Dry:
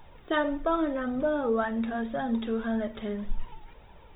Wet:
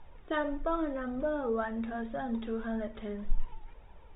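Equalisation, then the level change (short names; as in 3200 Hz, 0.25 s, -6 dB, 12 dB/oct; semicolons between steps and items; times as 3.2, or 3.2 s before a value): air absorption 100 m; tone controls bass -4 dB, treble -5 dB; low shelf 78 Hz +11.5 dB; -4.5 dB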